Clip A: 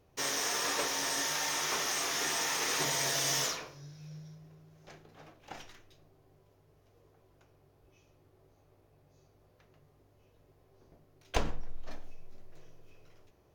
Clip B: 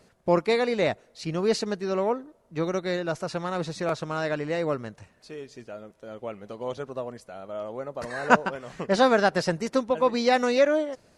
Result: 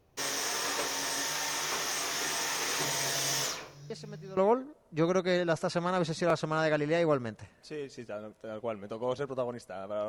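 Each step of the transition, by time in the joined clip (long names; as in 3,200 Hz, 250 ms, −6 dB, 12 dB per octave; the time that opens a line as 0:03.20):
clip A
0:03.90: mix in clip B from 0:01.49 0.47 s −17 dB
0:04.37: continue with clip B from 0:01.96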